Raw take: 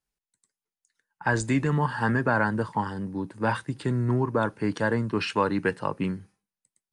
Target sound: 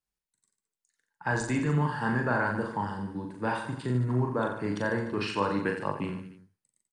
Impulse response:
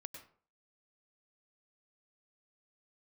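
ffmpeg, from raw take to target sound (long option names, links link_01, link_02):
-af "aecho=1:1:40|88|145.6|214.7|297.7:0.631|0.398|0.251|0.158|0.1,volume=-5.5dB"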